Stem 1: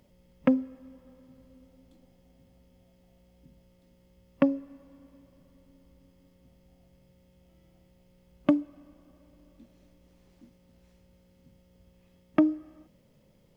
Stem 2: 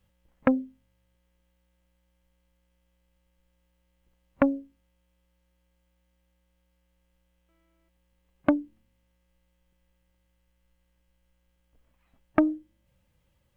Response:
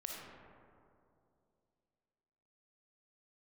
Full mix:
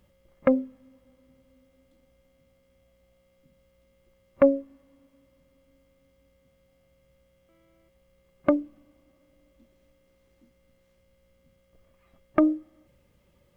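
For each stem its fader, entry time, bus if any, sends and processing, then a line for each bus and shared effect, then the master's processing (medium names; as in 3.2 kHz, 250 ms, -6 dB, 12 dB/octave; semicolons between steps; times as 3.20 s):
-6.5 dB, 0.00 s, no send, none
+3.0 dB, 0.00 s, no send, small resonant body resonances 370/550/1200/2100 Hz, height 10 dB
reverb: none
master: peak limiter -7 dBFS, peak gain reduction 7.5 dB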